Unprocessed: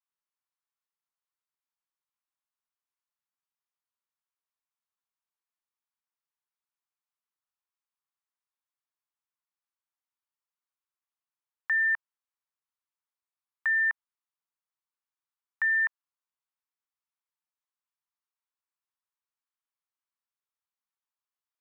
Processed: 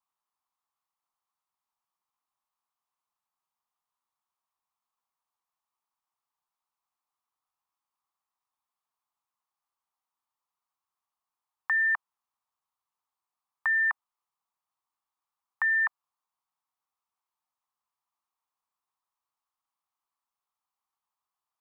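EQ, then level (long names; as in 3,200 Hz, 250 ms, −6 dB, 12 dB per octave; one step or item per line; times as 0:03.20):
flat-topped bell 950 Hz +11.5 dB 1 octave
0.0 dB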